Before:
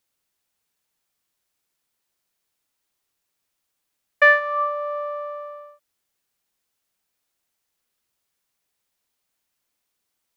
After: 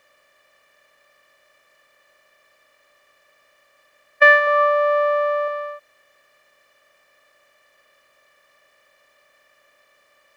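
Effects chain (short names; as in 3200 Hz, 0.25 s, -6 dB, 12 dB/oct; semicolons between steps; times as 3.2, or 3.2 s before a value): per-bin compression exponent 0.6; 4.47–5.48 low shelf 480 Hz +8 dB; gain +2 dB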